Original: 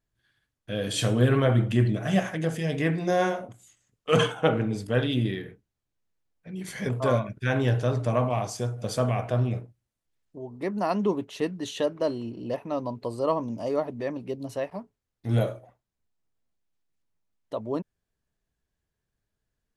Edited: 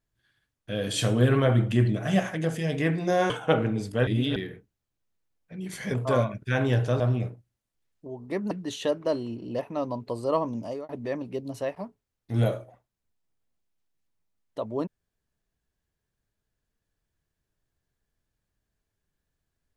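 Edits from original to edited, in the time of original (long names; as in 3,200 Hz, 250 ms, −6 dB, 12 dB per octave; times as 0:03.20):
0:03.30–0:04.25: remove
0:05.02–0:05.31: reverse
0:07.95–0:09.31: remove
0:10.82–0:11.46: remove
0:13.57–0:13.84: fade out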